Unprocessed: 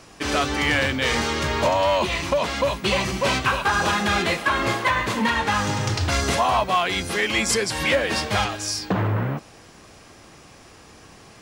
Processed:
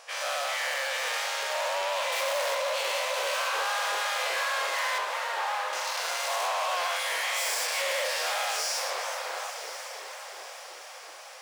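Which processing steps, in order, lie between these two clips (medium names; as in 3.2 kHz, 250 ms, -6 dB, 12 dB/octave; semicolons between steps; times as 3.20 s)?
every event in the spectrogram widened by 240 ms; 2.12–2.55 s: waveshaping leveller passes 3; 4.98–5.73 s: low-pass 1.2 kHz 12 dB/octave; overload inside the chain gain 20.5 dB; brick-wall FIR high-pass 480 Hz; echo that smears into a reverb 1018 ms, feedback 54%, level -11 dB; modulated delay 379 ms, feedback 56%, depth 188 cents, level -10.5 dB; trim -7.5 dB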